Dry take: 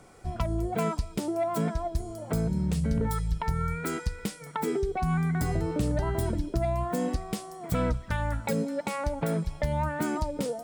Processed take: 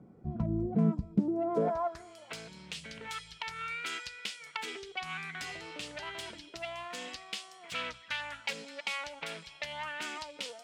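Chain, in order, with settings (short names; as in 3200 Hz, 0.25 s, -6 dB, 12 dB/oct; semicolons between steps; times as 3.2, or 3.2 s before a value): self-modulated delay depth 0.12 ms; dynamic EQ 6600 Hz, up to +5 dB, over -54 dBFS, Q 0.71; band-pass sweep 200 Hz -> 2900 Hz, 1.31–2.18; gain +7.5 dB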